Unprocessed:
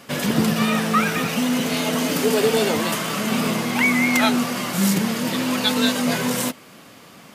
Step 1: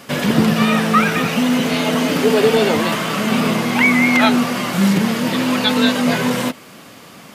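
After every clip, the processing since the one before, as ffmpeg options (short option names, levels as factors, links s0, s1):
-filter_complex "[0:a]acrossover=split=4200[s0][s1];[s1]acompressor=threshold=0.0141:ratio=4:attack=1:release=60[s2];[s0][s2]amix=inputs=2:normalize=0,volume=1.78"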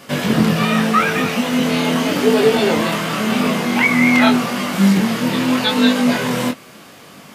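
-af "flanger=delay=20:depth=4.6:speed=0.84,volume=1.33"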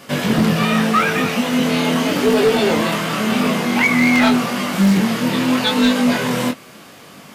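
-af "asoftclip=type=hard:threshold=0.355"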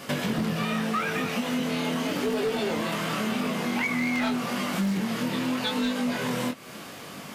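-af "acompressor=threshold=0.0447:ratio=4"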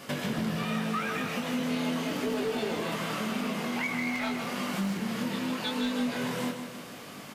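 -af "aecho=1:1:156|312|468|624|780|936:0.422|0.202|0.0972|0.0466|0.0224|0.0107,volume=0.596"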